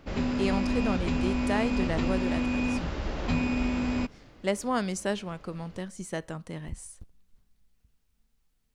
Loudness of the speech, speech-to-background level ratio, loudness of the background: -33.0 LUFS, -3.5 dB, -29.5 LUFS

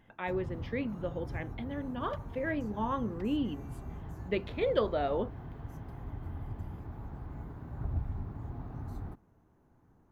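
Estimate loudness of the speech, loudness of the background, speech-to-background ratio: -35.0 LUFS, -43.0 LUFS, 8.0 dB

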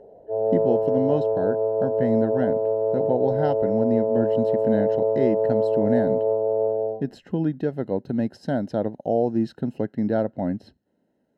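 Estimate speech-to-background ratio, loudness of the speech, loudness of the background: -3.5 dB, -26.5 LUFS, -23.0 LUFS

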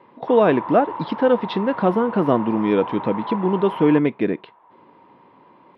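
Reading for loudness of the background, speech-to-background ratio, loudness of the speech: -31.5 LUFS, 11.5 dB, -20.0 LUFS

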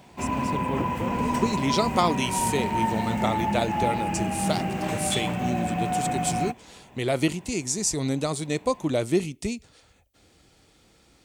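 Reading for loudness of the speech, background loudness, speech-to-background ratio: -28.5 LUFS, -27.5 LUFS, -1.0 dB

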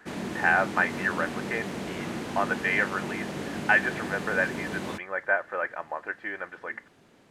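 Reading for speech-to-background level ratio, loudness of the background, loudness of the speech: 6.0 dB, -34.5 LUFS, -28.5 LUFS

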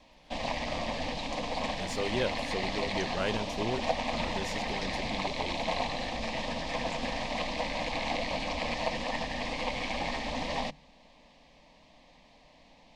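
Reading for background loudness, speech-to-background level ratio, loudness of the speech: -33.5 LUFS, -4.5 dB, -38.0 LUFS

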